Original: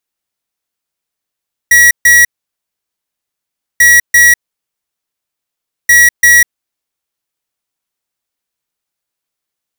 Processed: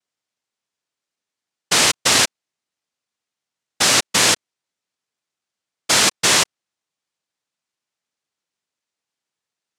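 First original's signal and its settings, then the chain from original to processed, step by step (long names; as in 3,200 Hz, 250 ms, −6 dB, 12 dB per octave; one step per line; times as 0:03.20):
beeps in groups square 1,920 Hz, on 0.20 s, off 0.14 s, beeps 2, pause 1.55 s, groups 3, −5 dBFS
Butterworth high-pass 740 Hz 48 dB per octave
brickwall limiter −7 dBFS
cochlear-implant simulation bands 1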